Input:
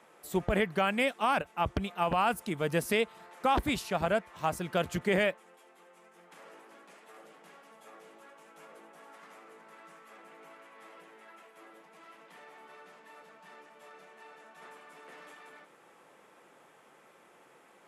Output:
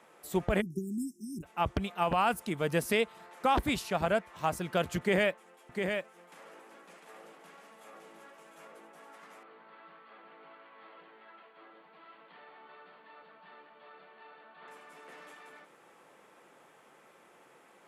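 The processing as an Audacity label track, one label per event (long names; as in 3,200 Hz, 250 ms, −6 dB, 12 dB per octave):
0.610000	1.430000	time-frequency box erased 390–5,100 Hz
4.990000	8.680000	single-tap delay 702 ms −5.5 dB
9.430000	14.680000	Chebyshev low-pass with heavy ripple 4,500 Hz, ripple 3 dB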